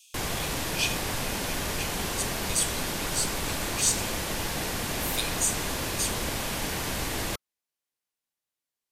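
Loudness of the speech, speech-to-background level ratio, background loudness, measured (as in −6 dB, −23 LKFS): −31.0 LKFS, −1.0 dB, −30.0 LKFS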